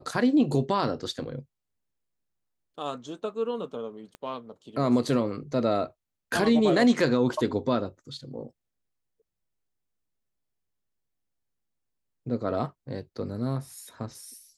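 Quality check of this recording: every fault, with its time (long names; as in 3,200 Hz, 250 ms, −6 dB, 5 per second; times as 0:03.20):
0:04.15: click −27 dBFS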